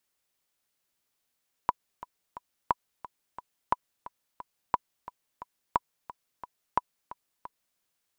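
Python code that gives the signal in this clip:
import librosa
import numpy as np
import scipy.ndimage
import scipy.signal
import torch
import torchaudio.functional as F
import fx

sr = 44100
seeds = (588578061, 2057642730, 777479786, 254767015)

y = fx.click_track(sr, bpm=177, beats=3, bars=6, hz=985.0, accent_db=17.0, level_db=-9.5)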